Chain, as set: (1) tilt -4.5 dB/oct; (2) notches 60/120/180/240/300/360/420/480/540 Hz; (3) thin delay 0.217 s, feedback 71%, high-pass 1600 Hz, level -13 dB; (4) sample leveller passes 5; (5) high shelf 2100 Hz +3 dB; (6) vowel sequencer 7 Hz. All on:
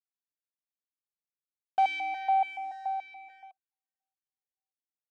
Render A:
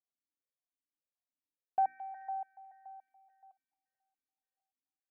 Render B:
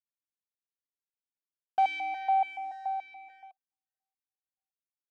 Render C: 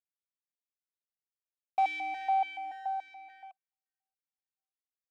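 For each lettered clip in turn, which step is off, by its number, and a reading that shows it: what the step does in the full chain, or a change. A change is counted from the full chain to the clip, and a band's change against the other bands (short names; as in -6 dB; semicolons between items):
4, crest factor change +4.0 dB; 5, 4 kHz band -2.0 dB; 1, momentary loudness spread change +7 LU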